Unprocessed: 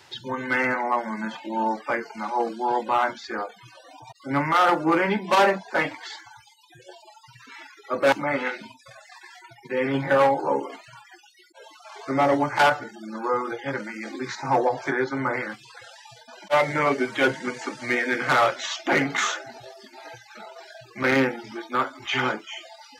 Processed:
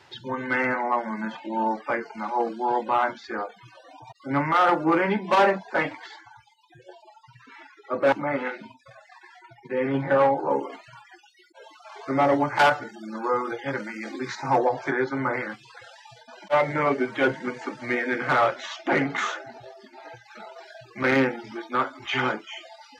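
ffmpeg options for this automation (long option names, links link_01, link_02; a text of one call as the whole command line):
ffmpeg -i in.wav -af "asetnsamples=nb_out_samples=441:pad=0,asendcmd='6.06 lowpass f 1500;10.51 lowpass f 3400;12.59 lowpass f 7100;14.58 lowpass f 3500;16.51 lowpass f 1900;20.25 lowpass f 3900',lowpass=frequency=2700:poles=1" out.wav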